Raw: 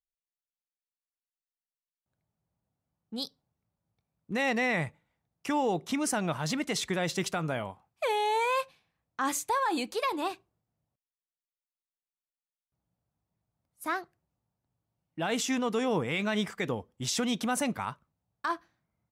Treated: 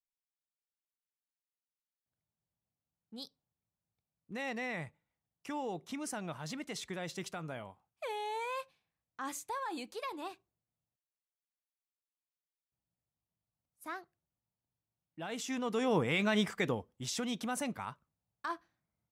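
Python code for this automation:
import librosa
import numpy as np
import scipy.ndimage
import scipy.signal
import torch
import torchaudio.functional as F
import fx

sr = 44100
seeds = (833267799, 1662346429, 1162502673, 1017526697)

y = fx.gain(x, sr, db=fx.line((15.36, -10.5), (15.99, -0.5), (16.63, -0.5), (17.07, -7.0)))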